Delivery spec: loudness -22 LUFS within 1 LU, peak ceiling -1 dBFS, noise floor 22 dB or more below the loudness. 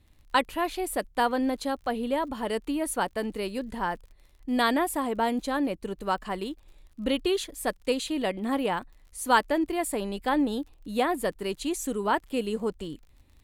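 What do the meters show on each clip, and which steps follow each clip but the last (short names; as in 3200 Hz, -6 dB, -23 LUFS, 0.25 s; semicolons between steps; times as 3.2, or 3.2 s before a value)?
ticks 43/s; loudness -28.5 LUFS; peak -8.5 dBFS; loudness target -22.0 LUFS
-> de-click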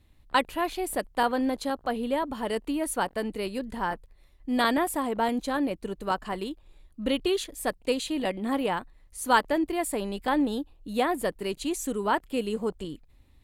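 ticks 0.45/s; loudness -29.0 LUFS; peak -8.5 dBFS; loudness target -22.0 LUFS
-> gain +7 dB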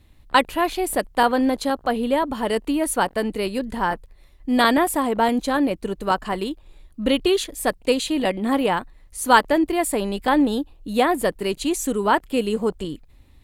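loudness -22.0 LUFS; peak -1.5 dBFS; noise floor -52 dBFS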